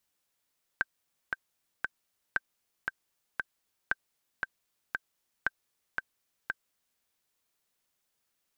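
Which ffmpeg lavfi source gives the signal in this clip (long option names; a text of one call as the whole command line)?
ffmpeg -f lavfi -i "aevalsrc='pow(10,(-13.5-4*gte(mod(t,3*60/116),60/116))/20)*sin(2*PI*1560*mod(t,60/116))*exp(-6.91*mod(t,60/116)/0.03)':duration=6.2:sample_rate=44100" out.wav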